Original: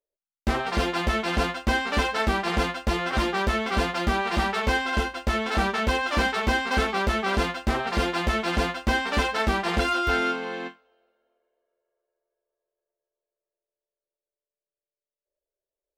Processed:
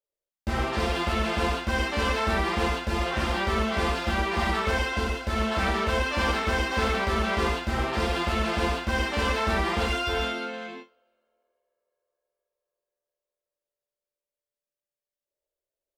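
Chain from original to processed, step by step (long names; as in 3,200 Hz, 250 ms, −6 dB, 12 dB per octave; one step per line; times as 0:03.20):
reverb whose tail is shaped and stops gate 170 ms flat, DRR −5 dB
level −7 dB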